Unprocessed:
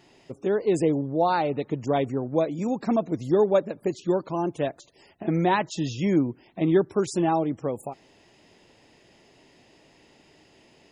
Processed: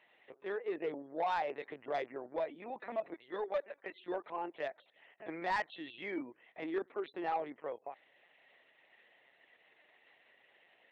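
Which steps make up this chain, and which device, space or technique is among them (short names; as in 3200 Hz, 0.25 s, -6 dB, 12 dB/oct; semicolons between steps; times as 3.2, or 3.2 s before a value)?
3.14–4 weighting filter A; talking toy (LPC vocoder at 8 kHz pitch kept; HPF 550 Hz 12 dB/oct; bell 1900 Hz +10 dB 0.44 oct; soft clip -19 dBFS, distortion -16 dB); gain -7.5 dB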